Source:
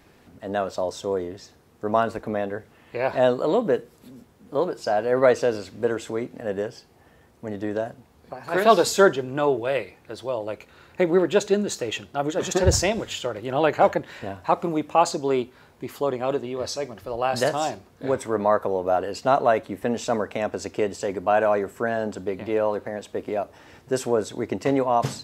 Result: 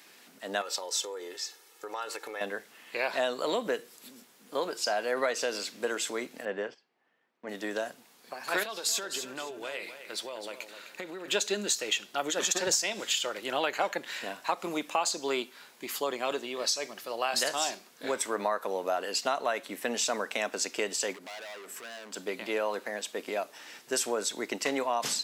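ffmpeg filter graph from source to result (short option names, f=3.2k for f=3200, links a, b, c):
-filter_complex "[0:a]asettb=1/sr,asplit=3[a][b][c];[a]atrim=end=0.614[d];[b]atrim=start=0.61:end=2.41,asetpts=PTS-STARTPTS,afade=t=in:d=0.004:c=qsin,afade=t=out:st=1.796:d=0.004:c=qsin,equalizer=f=140:w=0.55:g=-9.5,aecho=1:1:2.3:0.8,atrim=end_sample=79380,acompressor=threshold=-30dB:ratio=4:attack=3.2:release=140:knee=1:detection=peak[e];[c]atrim=start=2.406[f];[d][e]acrossfade=d=0.004:c1=hsin:c2=qsin[g];[g][f]acrossfade=d=0.004:c1=qsin:c2=hsin,asettb=1/sr,asplit=3[h][i][j];[h]atrim=end=6.454[k];[i]atrim=start=6.45:end=7.49,asetpts=PTS-STARTPTS,afade=t=in:d=0.004:c=qsin,afade=t=out:st=1.036:d=0.004:c=qsin,highpass=110,lowpass=2.4k,agate=range=-15dB:threshold=-45dB:ratio=16:release=100:detection=peak[l];[j]atrim=start=7.486[m];[k][l]acrossfade=d=0.004:c1=hsin:c2=qsin[n];[n][m]acrossfade=d=0.004:c1=qsin:c2=hsin,asettb=1/sr,asplit=3[o][p][q];[o]atrim=end=8.634[r];[p]atrim=start=8.63:end=11.28,asetpts=PTS-STARTPTS,afade=t=in:d=0.004:c=qsin,afade=t=out:st=2.646:d=0.004:c=qsin,acompressor=threshold=-29dB:ratio=16:attack=3.2:release=140:knee=1:detection=peak,aeval=exprs='clip(val(0),-1,0.0501)':c=same,aecho=1:1:258|516|774:0.299|0.0806|0.0218,atrim=end_sample=116865[s];[q]atrim=start=11.276[t];[r][s]acrossfade=d=0.004:c1=hsin:c2=qsin[u];[u][t]acrossfade=d=0.004:c1=qsin:c2=hsin,asettb=1/sr,asplit=3[v][w][x];[v]atrim=end=21.134[y];[w]atrim=start=21.13:end=22.16,asetpts=PTS-STARTPTS,afade=t=in:d=0.004:c=qsin,afade=t=out:st=1.026:d=0.004:c=qsin,acompressor=threshold=-36dB:ratio=2.5:attack=3.2:release=140:knee=1:detection=peak,asoftclip=type=hard:threshold=-37.5dB[z];[x]atrim=start=22.156[aa];[y][z]acrossfade=d=0.004:c1=hsin:c2=qsin[ab];[ab][aa]acrossfade=d=0.004:c1=qsin:c2=hsin,highpass=f=190:w=0.5412,highpass=f=190:w=1.3066,tiltshelf=f=1.3k:g=-9.5,acompressor=threshold=-25dB:ratio=6"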